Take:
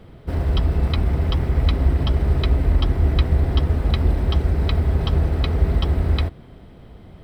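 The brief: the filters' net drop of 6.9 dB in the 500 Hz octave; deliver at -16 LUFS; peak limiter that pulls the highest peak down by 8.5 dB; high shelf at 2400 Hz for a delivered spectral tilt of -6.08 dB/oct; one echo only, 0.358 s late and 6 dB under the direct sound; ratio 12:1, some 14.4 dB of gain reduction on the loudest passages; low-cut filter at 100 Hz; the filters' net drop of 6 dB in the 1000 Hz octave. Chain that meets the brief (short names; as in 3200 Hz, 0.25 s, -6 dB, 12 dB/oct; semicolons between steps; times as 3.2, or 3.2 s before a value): HPF 100 Hz; bell 500 Hz -8.5 dB; bell 1000 Hz -6 dB; high shelf 2400 Hz +4.5 dB; compressor 12:1, threshold -34 dBFS; limiter -30.5 dBFS; echo 0.358 s -6 dB; gain +24 dB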